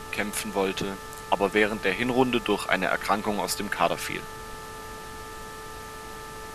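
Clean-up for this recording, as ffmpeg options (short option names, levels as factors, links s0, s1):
-af "adeclick=t=4,bandreject=f=438:t=h:w=4,bandreject=f=876:t=h:w=4,bandreject=f=1314:t=h:w=4,bandreject=f=1752:t=h:w=4,bandreject=f=1200:w=30,afftdn=nr=30:nf=-40"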